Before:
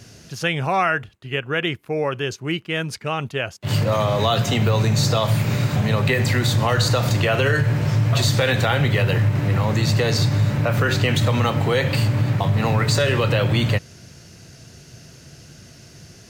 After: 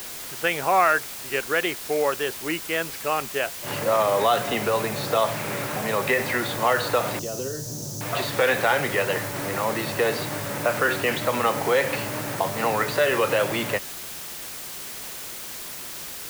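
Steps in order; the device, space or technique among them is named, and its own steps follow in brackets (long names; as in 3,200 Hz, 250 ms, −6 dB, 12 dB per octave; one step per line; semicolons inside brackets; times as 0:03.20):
wax cylinder (band-pass filter 380–2,300 Hz; tape wow and flutter; white noise bed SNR 11 dB)
0:07.19–0:08.01: drawn EQ curve 220 Hz 0 dB, 2,200 Hz −28 dB, 6,100 Hz +9 dB, 8,700 Hz −3 dB
level +1.5 dB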